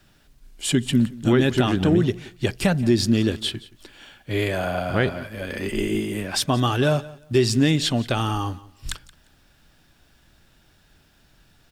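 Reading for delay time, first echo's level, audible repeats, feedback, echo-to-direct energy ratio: 175 ms, -20.0 dB, 2, 21%, -20.0 dB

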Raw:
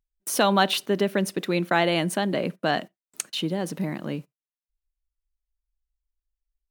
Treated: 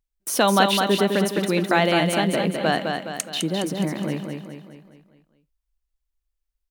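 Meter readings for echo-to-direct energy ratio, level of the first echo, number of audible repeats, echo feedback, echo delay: -4.0 dB, -5.0 dB, 5, 49%, 208 ms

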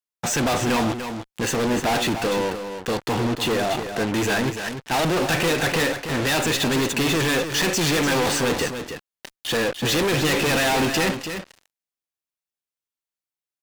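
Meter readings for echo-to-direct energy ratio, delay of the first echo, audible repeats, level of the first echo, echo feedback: -8.5 dB, 295 ms, 1, -8.5 dB, no regular repeats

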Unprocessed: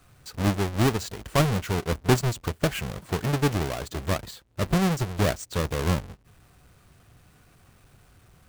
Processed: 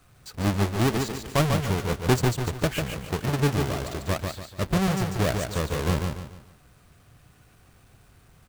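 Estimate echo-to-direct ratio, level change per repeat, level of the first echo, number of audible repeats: -4.5 dB, -9.0 dB, -5.0 dB, 4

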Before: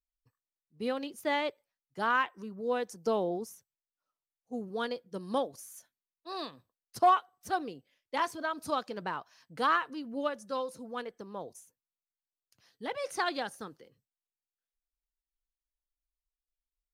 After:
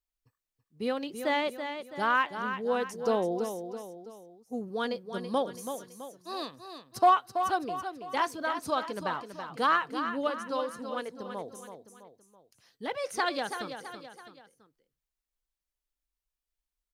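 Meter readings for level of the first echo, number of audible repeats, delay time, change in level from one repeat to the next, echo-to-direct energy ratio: -8.5 dB, 3, 330 ms, -6.5 dB, -7.5 dB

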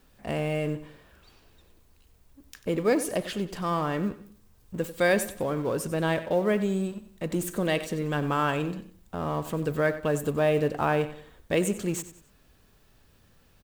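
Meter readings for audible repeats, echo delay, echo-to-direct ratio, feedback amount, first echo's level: 3, 93 ms, -13.5 dB, 36%, -14.0 dB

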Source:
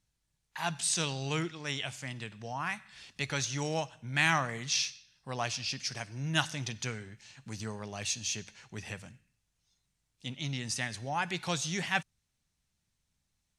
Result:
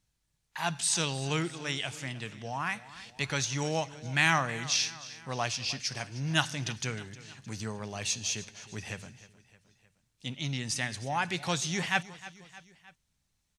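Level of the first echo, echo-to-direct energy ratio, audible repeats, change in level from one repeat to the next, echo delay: -17.5 dB, -16.0 dB, 3, -5.0 dB, 309 ms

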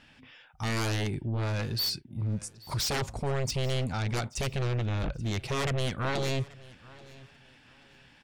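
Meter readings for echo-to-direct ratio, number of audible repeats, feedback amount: -21.0 dB, 2, 26%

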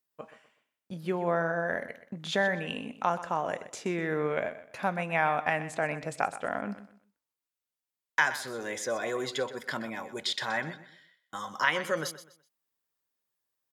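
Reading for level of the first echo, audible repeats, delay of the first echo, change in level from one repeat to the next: -14.0 dB, 2, 125 ms, -11.0 dB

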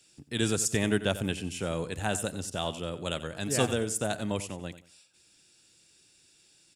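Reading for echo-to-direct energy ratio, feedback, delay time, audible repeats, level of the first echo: -13.5 dB, 27%, 91 ms, 2, -14.0 dB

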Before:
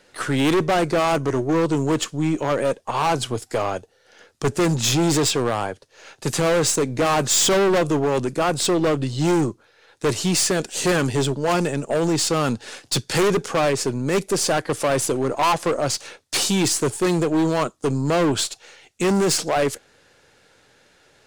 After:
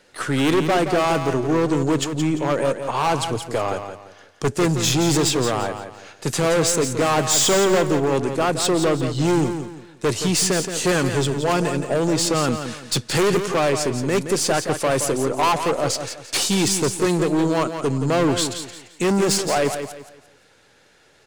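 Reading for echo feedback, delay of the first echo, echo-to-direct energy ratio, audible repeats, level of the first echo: 32%, 172 ms, -8.0 dB, 3, -8.5 dB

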